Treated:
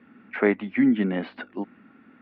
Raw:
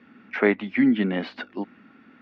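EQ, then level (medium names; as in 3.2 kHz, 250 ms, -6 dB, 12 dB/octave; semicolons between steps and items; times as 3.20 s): distance through air 300 m; 0.0 dB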